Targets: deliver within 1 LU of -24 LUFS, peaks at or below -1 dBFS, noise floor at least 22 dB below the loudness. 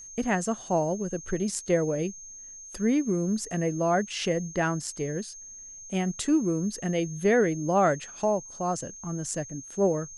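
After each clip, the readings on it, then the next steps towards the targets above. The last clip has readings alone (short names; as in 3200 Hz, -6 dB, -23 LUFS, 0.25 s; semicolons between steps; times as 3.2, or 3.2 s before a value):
steady tone 6400 Hz; tone level -42 dBFS; loudness -27.5 LUFS; peak -12.0 dBFS; loudness target -24.0 LUFS
-> notch 6400 Hz, Q 30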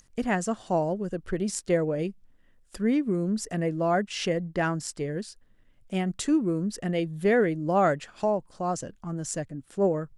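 steady tone none; loudness -28.0 LUFS; peak -12.0 dBFS; loudness target -24.0 LUFS
-> gain +4 dB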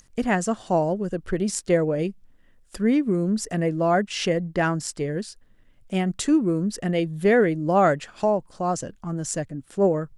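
loudness -24.0 LUFS; peak -8.0 dBFS; noise floor -57 dBFS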